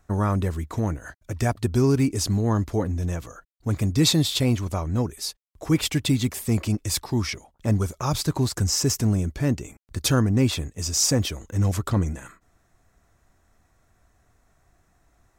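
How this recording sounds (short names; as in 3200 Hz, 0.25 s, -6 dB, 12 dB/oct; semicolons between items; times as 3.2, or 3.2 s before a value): noise floor -66 dBFS; spectral tilt -5.0 dB/oct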